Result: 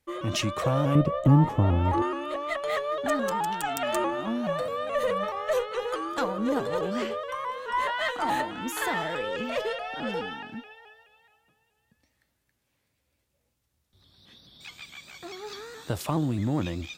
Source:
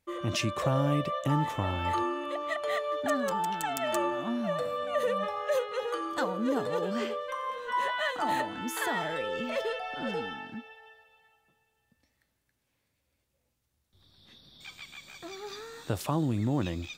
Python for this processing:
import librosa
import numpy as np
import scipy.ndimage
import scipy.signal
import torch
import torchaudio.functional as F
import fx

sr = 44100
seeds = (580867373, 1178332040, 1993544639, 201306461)

y = fx.cheby_harmonics(x, sr, harmonics=(6,), levels_db=(-27,), full_scale_db=-12.5)
y = fx.tilt_shelf(y, sr, db=9.5, hz=870.0, at=(0.95, 2.02))
y = fx.vibrato_shape(y, sr, shape='saw_up', rate_hz=4.7, depth_cents=100.0)
y = y * librosa.db_to_amplitude(2.0)